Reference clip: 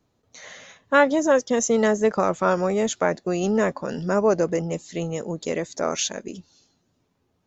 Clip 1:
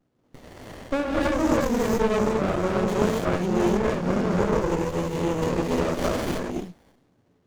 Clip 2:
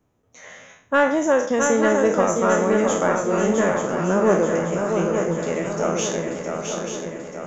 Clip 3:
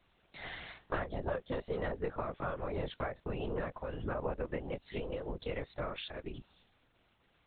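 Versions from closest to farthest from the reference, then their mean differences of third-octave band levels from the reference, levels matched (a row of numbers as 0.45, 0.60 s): 2, 3, 1; 7.0, 9.5, 12.0 dB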